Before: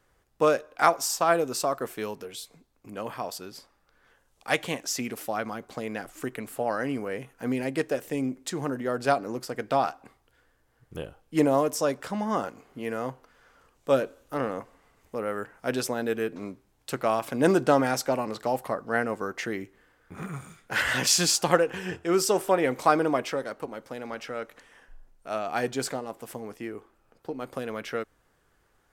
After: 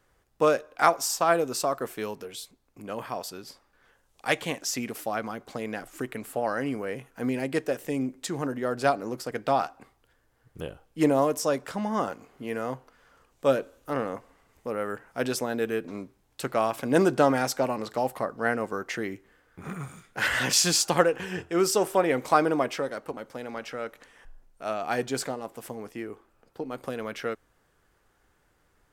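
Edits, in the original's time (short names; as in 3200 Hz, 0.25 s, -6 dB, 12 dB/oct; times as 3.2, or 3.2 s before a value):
shrink pauses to 85%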